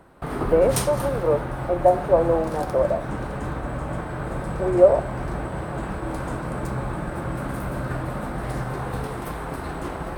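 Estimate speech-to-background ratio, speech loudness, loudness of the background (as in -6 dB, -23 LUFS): 8.0 dB, -21.5 LUFS, -29.5 LUFS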